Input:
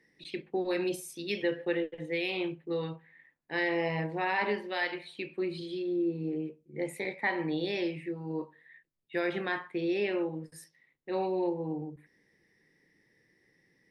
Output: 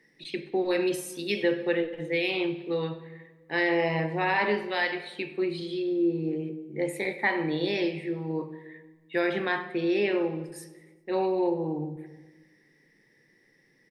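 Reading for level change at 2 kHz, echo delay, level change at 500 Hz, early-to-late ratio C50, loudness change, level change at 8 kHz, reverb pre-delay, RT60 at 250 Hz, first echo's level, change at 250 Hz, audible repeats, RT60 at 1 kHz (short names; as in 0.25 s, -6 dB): +4.5 dB, 99 ms, +5.0 dB, 12.5 dB, +4.5 dB, +4.5 dB, 4 ms, 1.5 s, -21.0 dB, +4.5 dB, 3, 1.3 s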